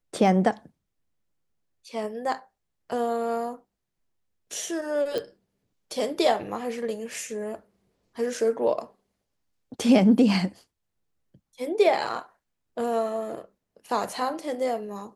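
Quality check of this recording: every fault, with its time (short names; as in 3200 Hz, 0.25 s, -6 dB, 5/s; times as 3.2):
5.18 pop -17 dBFS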